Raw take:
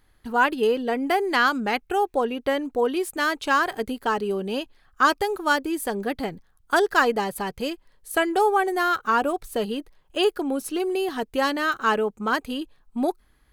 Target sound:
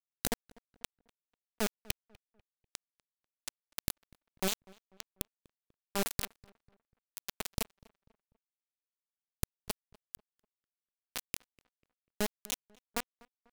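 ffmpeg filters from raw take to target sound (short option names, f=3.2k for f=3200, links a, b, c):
-filter_complex "[0:a]equalizer=f=520:w=0.33:g=-5.5,acompressor=threshold=-29dB:ratio=8,alimiter=level_in=7dB:limit=-24dB:level=0:latency=1:release=131,volume=-7dB,asoftclip=type=tanh:threshold=-34dB,acrossover=split=200[a][b];[b]acompressor=threshold=-59dB:ratio=3[c];[a][c]amix=inputs=2:normalize=0,acrusher=bits=4:dc=4:mix=0:aa=0.000001,highshelf=f=3.9k:g=9,asplit=2[d][e];[e]adelay=246,lowpass=f=2.1k:p=1,volume=-23dB,asplit=2[f][g];[g]adelay=246,lowpass=f=2.1k:p=1,volume=0.4,asplit=2[h][i];[i]adelay=246,lowpass=f=2.1k:p=1,volume=0.4[j];[d][f][h][j]amix=inputs=4:normalize=0,volume=13dB"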